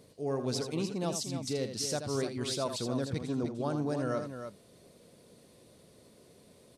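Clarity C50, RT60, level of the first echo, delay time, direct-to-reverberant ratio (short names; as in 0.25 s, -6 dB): none, none, -8.5 dB, 80 ms, none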